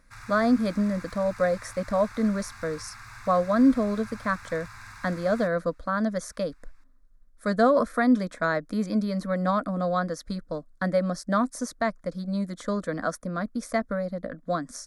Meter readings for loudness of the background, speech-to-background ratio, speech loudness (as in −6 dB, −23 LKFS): −44.5 LKFS, 17.5 dB, −27.0 LKFS